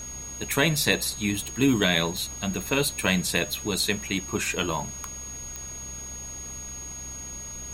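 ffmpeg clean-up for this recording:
-af "adeclick=t=4,bandreject=f=64.5:t=h:w=4,bandreject=f=129:t=h:w=4,bandreject=f=193.5:t=h:w=4,bandreject=f=258:t=h:w=4,bandreject=f=6.6k:w=30,afftdn=nr=30:nf=-38"

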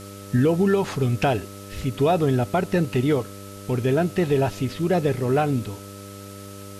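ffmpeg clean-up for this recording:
-af "bandreject=f=99.5:t=h:w=4,bandreject=f=199:t=h:w=4,bandreject=f=298.5:t=h:w=4,bandreject=f=398:t=h:w=4,bandreject=f=497.5:t=h:w=4,bandreject=f=597:t=h:w=4,bandreject=f=1.3k:w=30,afftdn=nr=29:nf=-39"

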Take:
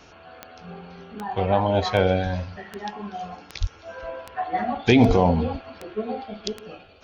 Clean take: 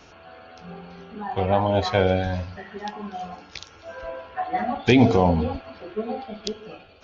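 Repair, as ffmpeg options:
-filter_complex "[0:a]adeclick=t=4,asplit=3[a][b][c];[a]afade=t=out:st=3.6:d=0.02[d];[b]highpass=f=140:w=0.5412,highpass=f=140:w=1.3066,afade=t=in:st=3.6:d=0.02,afade=t=out:st=3.72:d=0.02[e];[c]afade=t=in:st=3.72:d=0.02[f];[d][e][f]amix=inputs=3:normalize=0,asplit=3[g][h][i];[g]afade=t=out:st=5.07:d=0.02[j];[h]highpass=f=140:w=0.5412,highpass=f=140:w=1.3066,afade=t=in:st=5.07:d=0.02,afade=t=out:st=5.19:d=0.02[k];[i]afade=t=in:st=5.19:d=0.02[l];[j][k][l]amix=inputs=3:normalize=0"

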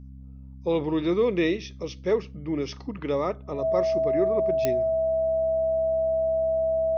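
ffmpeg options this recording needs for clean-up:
-af "adeclick=t=4,bandreject=f=66:t=h:w=4,bandreject=f=132:t=h:w=4,bandreject=f=198:t=h:w=4,bandreject=f=264:t=h:w=4,bandreject=f=650:w=30"

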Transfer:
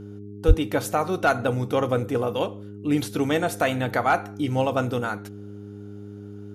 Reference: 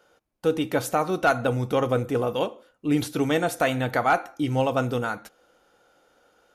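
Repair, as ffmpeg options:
-filter_complex "[0:a]bandreject=f=102.1:t=h:w=4,bandreject=f=204.2:t=h:w=4,bandreject=f=306.3:t=h:w=4,bandreject=f=408.4:t=h:w=4,asplit=3[a][b][c];[a]afade=t=out:st=0.47:d=0.02[d];[b]highpass=f=140:w=0.5412,highpass=f=140:w=1.3066,afade=t=in:st=0.47:d=0.02,afade=t=out:st=0.59:d=0.02[e];[c]afade=t=in:st=0.59:d=0.02[f];[d][e][f]amix=inputs=3:normalize=0"

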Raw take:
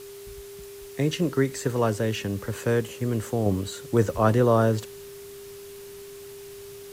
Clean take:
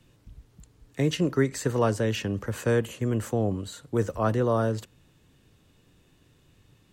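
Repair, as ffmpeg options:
-af "adeclick=t=4,bandreject=f=400:w=30,afwtdn=0.004,asetnsamples=n=441:p=0,asendcmd='3.46 volume volume -4.5dB',volume=0dB"

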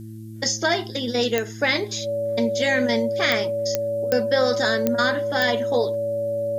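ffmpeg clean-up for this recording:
-af "adeclick=t=4,bandreject=f=110:t=h:w=4,bandreject=f=220:t=h:w=4,bandreject=f=330:t=h:w=4,bandreject=f=570:w=30,agate=range=-21dB:threshold=-26dB"

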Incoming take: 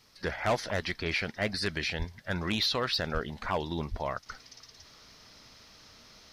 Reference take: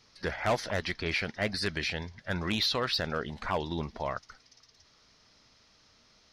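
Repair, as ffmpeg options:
-filter_complex "[0:a]asplit=3[a][b][c];[a]afade=t=out:st=1.98:d=0.02[d];[b]highpass=f=140:w=0.5412,highpass=f=140:w=1.3066,afade=t=in:st=1.98:d=0.02,afade=t=out:st=2.1:d=0.02[e];[c]afade=t=in:st=2.1:d=0.02[f];[d][e][f]amix=inputs=3:normalize=0,asplit=3[g][h][i];[g]afade=t=out:st=3.13:d=0.02[j];[h]highpass=f=140:w=0.5412,highpass=f=140:w=1.3066,afade=t=in:st=3.13:d=0.02,afade=t=out:st=3.25:d=0.02[k];[i]afade=t=in:st=3.25:d=0.02[l];[j][k][l]amix=inputs=3:normalize=0,asplit=3[m][n][o];[m]afade=t=out:st=3.9:d=0.02[p];[n]highpass=f=140:w=0.5412,highpass=f=140:w=1.3066,afade=t=in:st=3.9:d=0.02,afade=t=out:st=4.02:d=0.02[q];[o]afade=t=in:st=4.02:d=0.02[r];[p][q][r]amix=inputs=3:normalize=0,agate=range=-21dB:threshold=-48dB,asetnsamples=n=441:p=0,asendcmd='4.26 volume volume -8dB',volume=0dB"

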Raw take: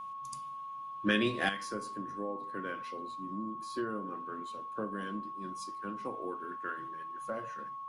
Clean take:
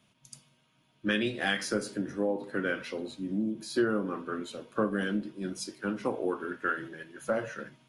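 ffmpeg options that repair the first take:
-af "bandreject=f=1.1k:w=30,asetnsamples=n=441:p=0,asendcmd='1.49 volume volume 9.5dB',volume=0dB"

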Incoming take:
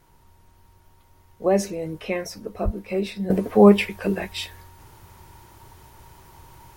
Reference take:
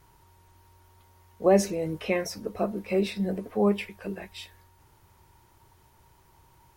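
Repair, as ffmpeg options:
-filter_complex "[0:a]asplit=3[a][b][c];[a]afade=t=out:st=2.64:d=0.02[d];[b]highpass=f=140:w=0.5412,highpass=f=140:w=1.3066,afade=t=in:st=2.64:d=0.02,afade=t=out:st=2.76:d=0.02[e];[c]afade=t=in:st=2.76:d=0.02[f];[d][e][f]amix=inputs=3:normalize=0,agate=range=-21dB:threshold=-47dB,asetnsamples=n=441:p=0,asendcmd='3.3 volume volume -11dB',volume=0dB"

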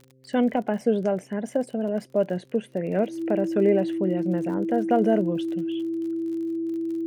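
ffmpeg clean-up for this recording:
-af "adeclick=t=4,bandreject=f=130.8:t=h:w=4,bandreject=f=261.6:t=h:w=4,bandreject=f=392.4:t=h:w=4,bandreject=f=523.2:t=h:w=4,bandreject=f=330:w=30"

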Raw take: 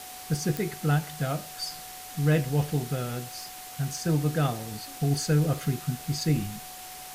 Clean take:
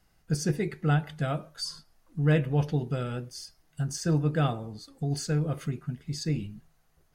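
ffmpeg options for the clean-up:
-af "adeclick=t=4,bandreject=f=740:w=30,afwtdn=0.0079,asetnsamples=n=441:p=0,asendcmd='4.71 volume volume -4dB',volume=0dB"

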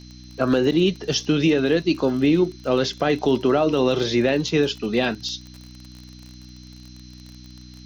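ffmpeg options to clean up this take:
-af "adeclick=t=4,bandreject=f=61.8:t=h:w=4,bandreject=f=123.6:t=h:w=4,bandreject=f=185.4:t=h:w=4,bandreject=f=247.2:t=h:w=4,bandreject=f=309:t=h:w=4,bandreject=f=4.1k:w=30,afftdn=nr=23:nf=-43"

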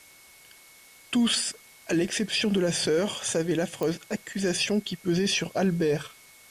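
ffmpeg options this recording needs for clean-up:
-af "adeclick=t=4,bandreject=f=2.2k:w=30,afwtdn=0.0025"

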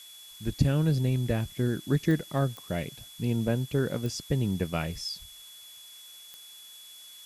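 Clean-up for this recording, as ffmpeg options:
-af "adeclick=t=4,bandreject=f=3.4k:w=30,afftdn=nr=25:nf=-49"

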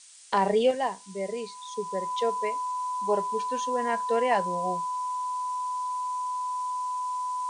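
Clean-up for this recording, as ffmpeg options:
-af "bandreject=f=1k:w=30,afftdn=nr=30:nf=-40"

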